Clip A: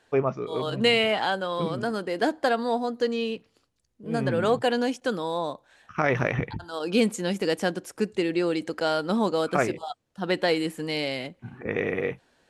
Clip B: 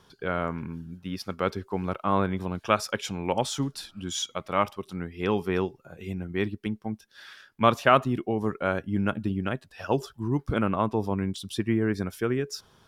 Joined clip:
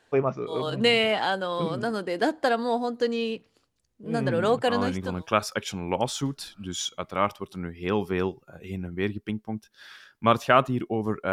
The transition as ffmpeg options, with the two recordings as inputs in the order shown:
-filter_complex "[0:a]apad=whole_dur=11.32,atrim=end=11.32,atrim=end=5.27,asetpts=PTS-STARTPTS[a];[1:a]atrim=start=1.88:end=8.69,asetpts=PTS-STARTPTS[b];[a][b]acrossfade=d=0.76:c1=qsin:c2=qsin"

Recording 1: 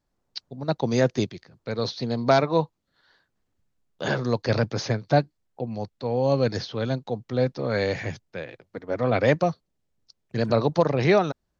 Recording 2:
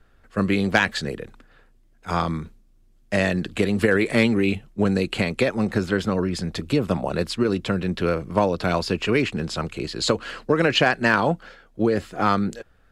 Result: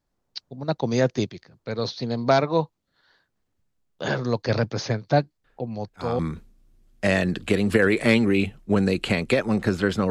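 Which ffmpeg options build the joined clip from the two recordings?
-filter_complex "[1:a]asplit=2[a][b];[0:a]apad=whole_dur=10.1,atrim=end=10.1,atrim=end=6.192[c];[b]atrim=start=2.278:end=6.19[d];[a]atrim=start=1.53:end=2.28,asetpts=PTS-STARTPTS,volume=-10.5dB,afade=t=in:d=0.004:c=hsin,afade=t=out:st=0.746:d=0.004:c=hsin,adelay=5440[e];[c][d]acrossfade=d=0.004:c1=hsin:c2=hsin[f];[f][e]amix=inputs=2:normalize=0"

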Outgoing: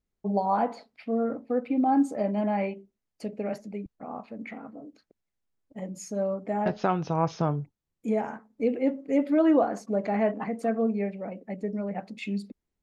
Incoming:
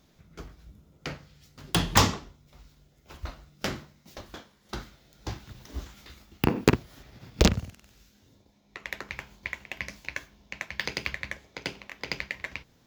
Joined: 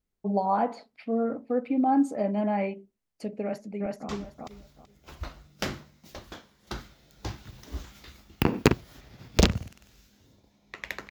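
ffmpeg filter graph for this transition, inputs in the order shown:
-filter_complex "[0:a]apad=whole_dur=11.1,atrim=end=11.1,atrim=end=4.092[a];[1:a]atrim=start=2.108:end=9.12[b];[a][b]acrossfade=d=0.004:c1=hsin:c2=hsin,asplit=2[c][d];[d]afade=t=in:st=3.42:d=0.01,afade=t=out:st=4.09:d=0.01,aecho=0:1:380|760|1140:0.891251|0.17825|0.03565[e];[c][e]amix=inputs=2:normalize=0"

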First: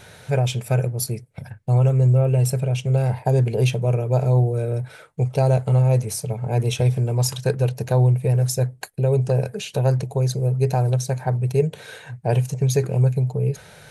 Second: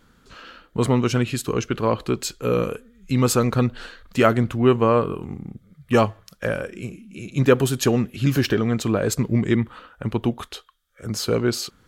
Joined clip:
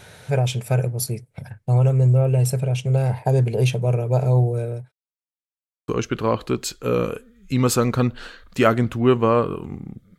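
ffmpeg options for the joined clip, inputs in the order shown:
-filter_complex "[0:a]apad=whole_dur=10.18,atrim=end=10.18,asplit=2[a][b];[a]atrim=end=4.92,asetpts=PTS-STARTPTS,afade=t=out:st=4.44:d=0.48:c=qsin[c];[b]atrim=start=4.92:end=5.88,asetpts=PTS-STARTPTS,volume=0[d];[1:a]atrim=start=1.47:end=5.77,asetpts=PTS-STARTPTS,afade=t=in:d=0.004:c=hsin[e];[c][d][e]concat=n=3:v=0:a=1"

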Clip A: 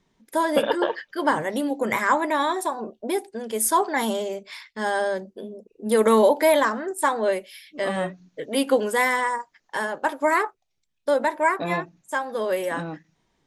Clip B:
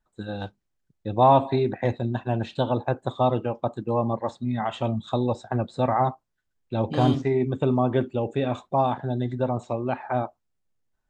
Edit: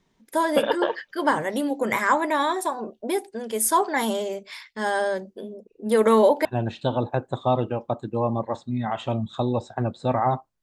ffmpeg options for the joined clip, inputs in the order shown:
-filter_complex "[0:a]asettb=1/sr,asplit=3[a][b][c];[a]atrim=end=5.544[d];[b]atrim=start=5.54:end=6.45,asetpts=PTS-STARTPTS,afade=t=in:d=0.004:c=qsin,afade=t=out:st=0.906:d=0.004:c=qsin,highshelf=f=6k:g=-7[e];[c]atrim=start=6.446[f];[d][e]acrossfade=d=0.004:c1=hsin:c2=qsin[g];[g][f]acrossfade=d=0.004:c1=qsin:c2=hsin,apad=whole_dur=10.62,atrim=end=10.62,atrim=end=6.452[h];[1:a]atrim=start=2.188:end=6.36[i];[h][i]acrossfade=d=0.004:c1=hsin:c2=hsin"

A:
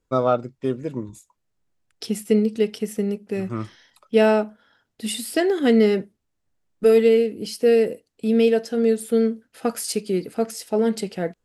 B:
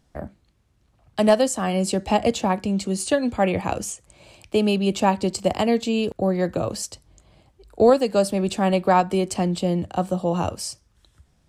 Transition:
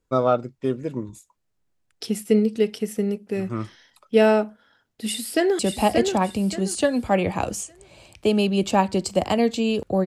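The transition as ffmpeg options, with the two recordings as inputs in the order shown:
-filter_complex "[0:a]apad=whole_dur=10.06,atrim=end=10.06,atrim=end=5.592[a];[1:a]atrim=start=1.878:end=6.35[b];[a][b]acrossfade=d=0.004:c1=hsin:c2=hsin,asplit=2[c][d];[d]afade=t=in:st=5.05:d=0.01,afade=t=out:st=5.59:d=0.01,aecho=0:1:580|1160|1740|2320:0.530884|0.18581|0.0650333|0.0227617[e];[c][e]amix=inputs=2:normalize=0"

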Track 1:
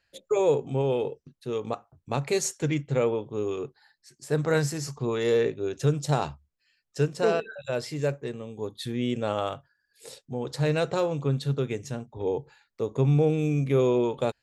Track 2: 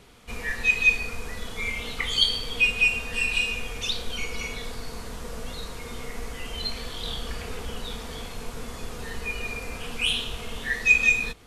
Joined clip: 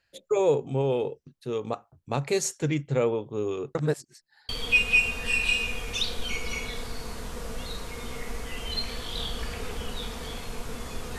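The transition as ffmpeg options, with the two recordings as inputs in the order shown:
-filter_complex "[0:a]apad=whole_dur=11.18,atrim=end=11.18,asplit=2[a][b];[a]atrim=end=3.752[c];[b]atrim=start=3.748:end=4.492,asetpts=PTS-STARTPTS,areverse[d];[1:a]atrim=start=2.368:end=9.06[e];[c][d]acrossfade=d=0.004:c1=hsin:c2=hsin[f];[f][e]acrossfade=d=0.004:c1=hsin:c2=hsin"

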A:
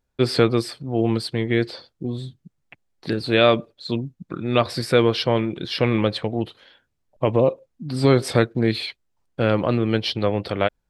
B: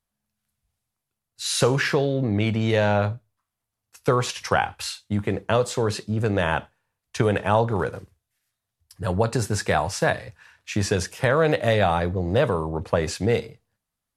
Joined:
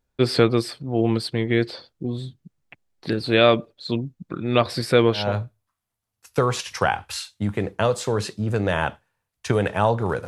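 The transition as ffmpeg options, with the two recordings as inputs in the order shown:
-filter_complex "[0:a]apad=whole_dur=10.27,atrim=end=10.27,atrim=end=5.37,asetpts=PTS-STARTPTS[a];[1:a]atrim=start=2.81:end=7.97,asetpts=PTS-STARTPTS[b];[a][b]acrossfade=d=0.26:c1=tri:c2=tri"

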